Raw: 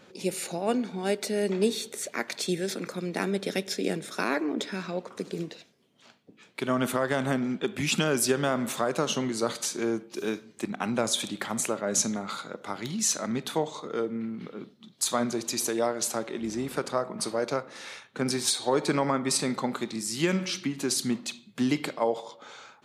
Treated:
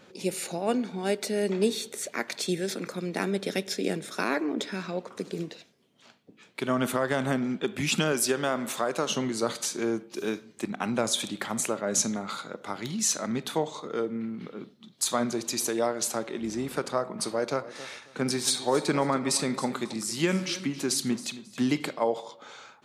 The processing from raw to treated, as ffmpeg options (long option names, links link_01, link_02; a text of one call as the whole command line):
ffmpeg -i in.wav -filter_complex "[0:a]asettb=1/sr,asplit=3[link_01][link_02][link_03];[link_01]atrim=end=8.124[link_04];[link_02]atrim=start=8.12:end=9.11,asetpts=PTS-STARTPTS,afade=type=in:duration=0.004:curve=qsin,afade=type=out:start_time=0.986:duration=0.004:curve=qsin,lowshelf=frequency=150:gain=-12[link_05];[link_03]atrim=start=9.106[link_06];[link_04][link_05]acrossfade=duration=0.004:curve1=hsin:curve2=qsin[link_07];[link_07][link_06]acrossfade=duration=0.004:curve1=qsin:curve2=hsin,asettb=1/sr,asplit=3[link_08][link_09][link_10];[link_08]atrim=end=17.294[link_11];[link_09]atrim=start=17.29:end=21.86,asetpts=PTS-STARTPTS,afade=type=in:duration=0.004:curve=qsin,afade=type=out:start_time=4.566:duration=0.004:curve=qsin,aecho=1:1:271|542:0.158|0.0396,atrim=end_sample=201537[link_12];[link_10]atrim=start=21.856[link_13];[link_11][link_12]acrossfade=duration=0.004:curve1=hsin:curve2=qsin[link_14];[link_14][link_13]acrossfade=duration=0.004:curve1=qsin:curve2=hsin" out.wav